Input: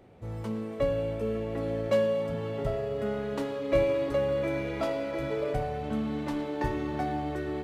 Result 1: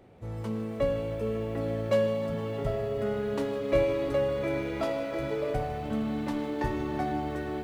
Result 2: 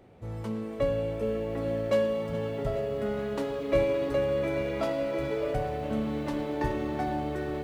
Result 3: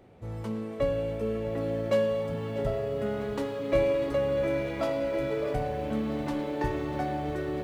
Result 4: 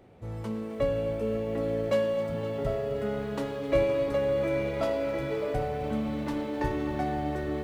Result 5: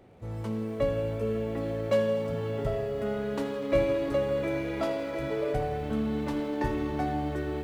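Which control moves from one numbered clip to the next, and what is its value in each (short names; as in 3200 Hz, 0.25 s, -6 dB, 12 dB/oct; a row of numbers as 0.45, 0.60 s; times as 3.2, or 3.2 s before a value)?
lo-fi delay, time: 154, 421, 644, 259, 82 ms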